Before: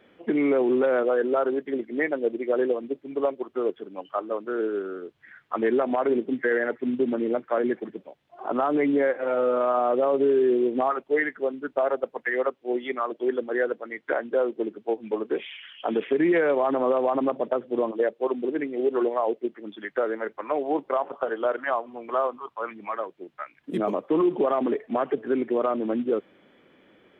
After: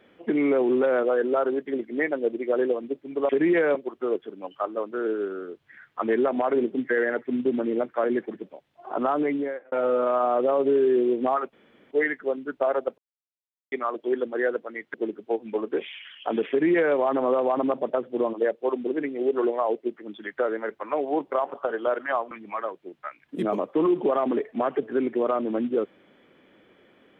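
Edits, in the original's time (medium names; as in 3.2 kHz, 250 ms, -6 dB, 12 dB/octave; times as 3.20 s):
8.67–9.26 s: fade out
11.07 s: insert room tone 0.38 s
12.14–12.88 s: mute
14.10–14.52 s: delete
16.08–16.54 s: copy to 3.29 s
21.89–22.66 s: delete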